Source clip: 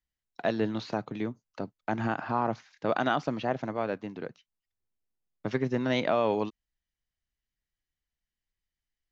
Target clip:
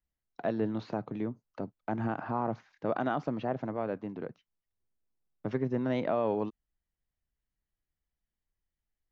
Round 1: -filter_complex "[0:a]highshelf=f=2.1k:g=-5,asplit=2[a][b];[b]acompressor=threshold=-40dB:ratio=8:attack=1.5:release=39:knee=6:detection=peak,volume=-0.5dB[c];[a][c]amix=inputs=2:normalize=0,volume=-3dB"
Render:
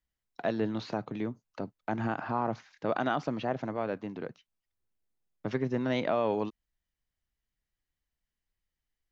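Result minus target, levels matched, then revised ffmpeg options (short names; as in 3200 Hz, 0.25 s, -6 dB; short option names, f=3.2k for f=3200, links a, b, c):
4000 Hz band +7.0 dB
-filter_complex "[0:a]highshelf=f=2.1k:g=-16.5,asplit=2[a][b];[b]acompressor=threshold=-40dB:ratio=8:attack=1.5:release=39:knee=6:detection=peak,volume=-0.5dB[c];[a][c]amix=inputs=2:normalize=0,volume=-3dB"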